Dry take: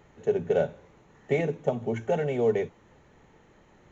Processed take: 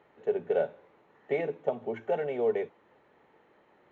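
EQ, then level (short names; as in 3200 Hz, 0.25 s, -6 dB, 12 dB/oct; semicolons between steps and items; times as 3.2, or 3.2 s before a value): HPF 170 Hz 6 dB/oct; air absorption 460 m; tone controls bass -12 dB, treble +10 dB; 0.0 dB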